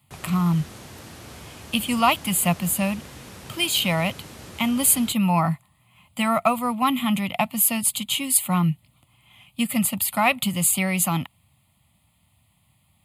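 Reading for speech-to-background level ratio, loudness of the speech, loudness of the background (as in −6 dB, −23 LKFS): 19.5 dB, −22.0 LKFS, −41.5 LKFS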